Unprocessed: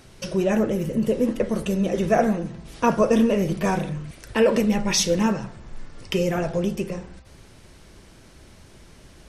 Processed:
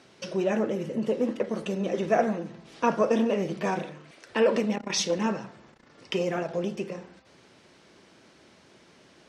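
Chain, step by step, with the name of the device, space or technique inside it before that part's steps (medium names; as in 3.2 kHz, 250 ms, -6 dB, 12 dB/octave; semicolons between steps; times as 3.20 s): public-address speaker with an overloaded transformer (transformer saturation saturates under 370 Hz; band-pass 220–5800 Hz); 3.82–4.32 s: tone controls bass -9 dB, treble -1 dB; trim -3 dB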